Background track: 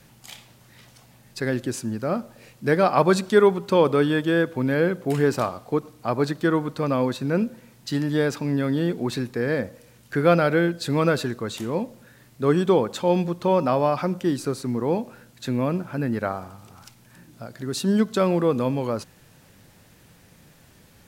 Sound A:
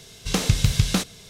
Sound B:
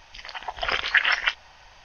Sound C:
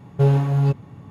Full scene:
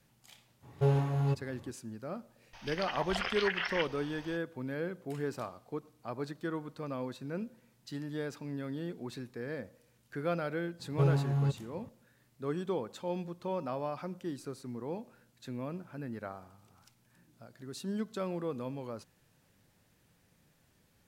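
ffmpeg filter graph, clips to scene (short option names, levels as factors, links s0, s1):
-filter_complex "[3:a]asplit=2[s0][s1];[0:a]volume=0.168[s2];[s0]equalizer=f=180:t=o:w=0.42:g=-14.5[s3];[2:a]acompressor=threshold=0.0355:ratio=6:attack=3.2:release=140:knee=1:detection=peak[s4];[s3]atrim=end=1.1,asetpts=PTS-STARTPTS,volume=0.422,afade=t=in:d=0.02,afade=t=out:st=1.08:d=0.02,adelay=620[s5];[s4]atrim=end=1.84,asetpts=PTS-STARTPTS,volume=0.841,afade=t=in:d=0.004:c=hsin,afade=t=out:st=1.836:d=0.004:c=hsin,adelay=2530[s6];[s1]atrim=end=1.1,asetpts=PTS-STARTPTS,volume=0.282,afade=t=in:d=0.004:c=hsin,afade=t=out:st=1.096:d=0.004:c=hsin,adelay=10790[s7];[s2][s5][s6][s7]amix=inputs=4:normalize=0"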